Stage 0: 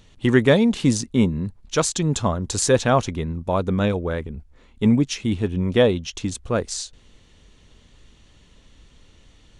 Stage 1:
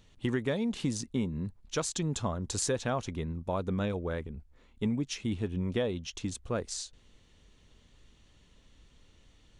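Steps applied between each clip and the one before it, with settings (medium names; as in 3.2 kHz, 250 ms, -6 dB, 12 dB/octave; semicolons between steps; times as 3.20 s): compression 6:1, threshold -18 dBFS, peak gain reduction 8.5 dB; trim -8.5 dB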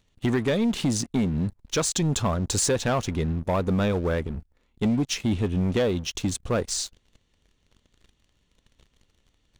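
waveshaping leveller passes 3; trim -1.5 dB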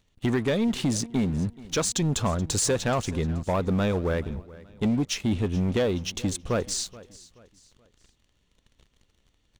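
feedback delay 428 ms, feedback 37%, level -20 dB; trim -1 dB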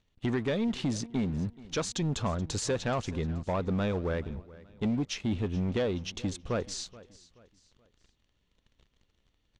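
low-pass 5.7 kHz 12 dB/octave; trim -5 dB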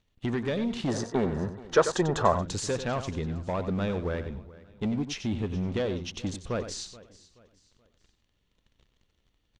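time-frequency box 0.88–2.33 s, 330–2000 Hz +12 dB; delay 93 ms -10.5 dB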